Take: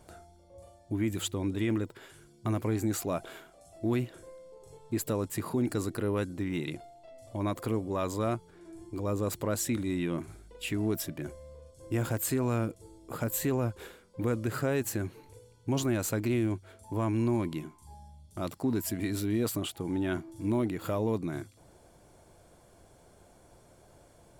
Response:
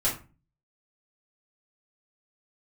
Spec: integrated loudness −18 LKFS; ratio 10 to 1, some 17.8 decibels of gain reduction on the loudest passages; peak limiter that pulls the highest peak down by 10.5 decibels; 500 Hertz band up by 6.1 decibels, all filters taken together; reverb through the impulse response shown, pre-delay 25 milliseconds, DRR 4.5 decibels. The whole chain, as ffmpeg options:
-filter_complex "[0:a]equalizer=frequency=500:width_type=o:gain=8,acompressor=threshold=-40dB:ratio=10,alimiter=level_in=13.5dB:limit=-24dB:level=0:latency=1,volume=-13.5dB,asplit=2[link_01][link_02];[1:a]atrim=start_sample=2205,adelay=25[link_03];[link_02][link_03]afir=irnorm=-1:irlink=0,volume=-13.5dB[link_04];[link_01][link_04]amix=inputs=2:normalize=0,volume=28dB"

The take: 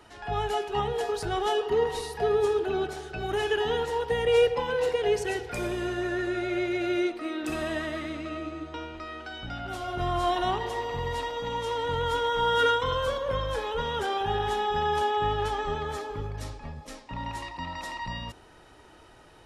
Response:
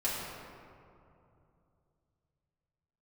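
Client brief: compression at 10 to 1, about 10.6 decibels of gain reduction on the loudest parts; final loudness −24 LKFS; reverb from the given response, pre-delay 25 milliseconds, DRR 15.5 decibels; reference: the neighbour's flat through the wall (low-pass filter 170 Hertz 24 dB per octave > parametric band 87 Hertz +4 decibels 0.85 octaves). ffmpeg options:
-filter_complex "[0:a]acompressor=threshold=-28dB:ratio=10,asplit=2[link_01][link_02];[1:a]atrim=start_sample=2205,adelay=25[link_03];[link_02][link_03]afir=irnorm=-1:irlink=0,volume=-22.5dB[link_04];[link_01][link_04]amix=inputs=2:normalize=0,lowpass=frequency=170:width=0.5412,lowpass=frequency=170:width=1.3066,equalizer=frequency=87:width_type=o:width=0.85:gain=4,volume=19.5dB"

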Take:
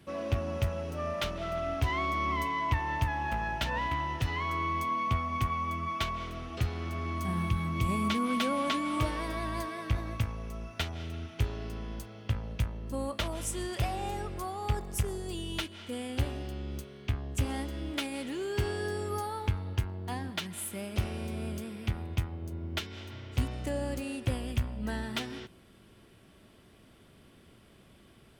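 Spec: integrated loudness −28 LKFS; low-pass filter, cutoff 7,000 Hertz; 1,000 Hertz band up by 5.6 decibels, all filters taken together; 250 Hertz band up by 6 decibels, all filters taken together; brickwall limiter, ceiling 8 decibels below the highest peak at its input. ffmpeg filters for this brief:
ffmpeg -i in.wav -af "lowpass=7000,equalizer=frequency=250:width_type=o:gain=7,equalizer=frequency=1000:width_type=o:gain=6,volume=4dB,alimiter=limit=-17.5dB:level=0:latency=1" out.wav

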